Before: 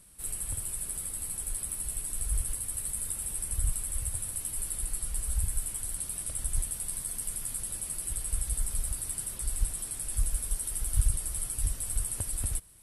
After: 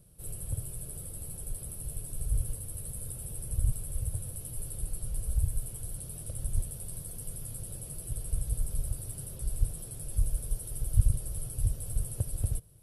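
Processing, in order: graphic EQ 125/250/500/1000/2000/4000/8000 Hz +12/-5/+7/-8/-11/-4/-11 dB

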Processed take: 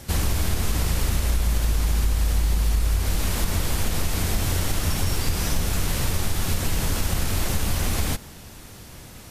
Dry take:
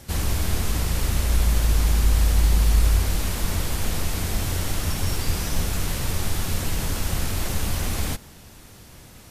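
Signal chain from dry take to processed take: compression, threshold -21 dBFS, peak gain reduction 8.5 dB; trim +3.5 dB

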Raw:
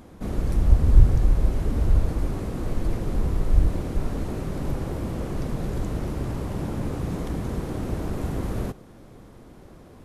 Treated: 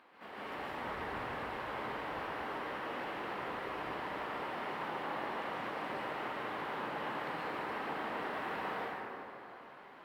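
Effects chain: high-pass 560 Hz 12 dB/octave; tilt shelf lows -7.5 dB, about 1.2 kHz; companded quantiser 6-bit; formant shift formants +4 st; distance through air 490 m; plate-style reverb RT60 3 s, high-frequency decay 0.5×, pre-delay 115 ms, DRR -7.5 dB; trim -2 dB

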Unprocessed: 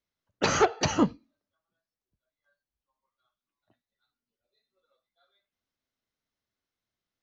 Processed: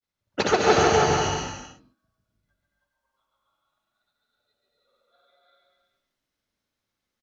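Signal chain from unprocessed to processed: granulator 100 ms, pitch spread up and down by 0 st; bouncing-ball echo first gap 140 ms, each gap 0.75×, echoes 5; gated-style reverb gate 360 ms rising, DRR -1.5 dB; trim +2 dB

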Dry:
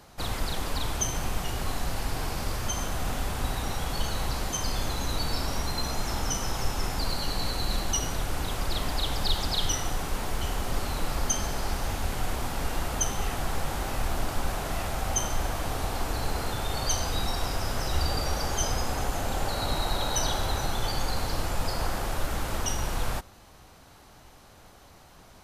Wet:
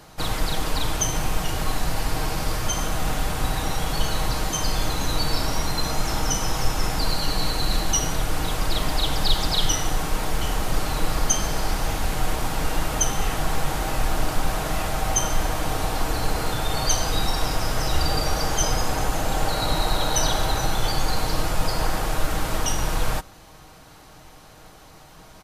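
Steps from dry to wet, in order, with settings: comb 6.4 ms, depth 38%; trim +5 dB

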